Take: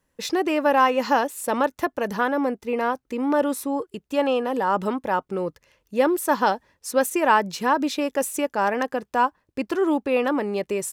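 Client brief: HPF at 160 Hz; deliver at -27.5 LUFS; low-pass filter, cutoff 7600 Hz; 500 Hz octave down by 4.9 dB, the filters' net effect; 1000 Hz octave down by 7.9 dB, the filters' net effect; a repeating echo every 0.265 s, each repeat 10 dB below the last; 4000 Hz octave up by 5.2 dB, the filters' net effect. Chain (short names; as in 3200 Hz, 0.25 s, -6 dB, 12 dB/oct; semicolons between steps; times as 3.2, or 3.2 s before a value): HPF 160 Hz; LPF 7600 Hz; bell 500 Hz -3.5 dB; bell 1000 Hz -9 dB; bell 4000 Hz +8 dB; feedback echo 0.265 s, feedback 32%, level -10 dB; gain -0.5 dB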